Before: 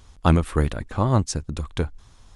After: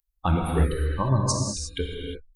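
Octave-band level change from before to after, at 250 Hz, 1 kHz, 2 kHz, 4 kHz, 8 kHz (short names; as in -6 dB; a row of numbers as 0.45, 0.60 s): -4.0, -1.5, -3.0, +2.5, +4.5 dB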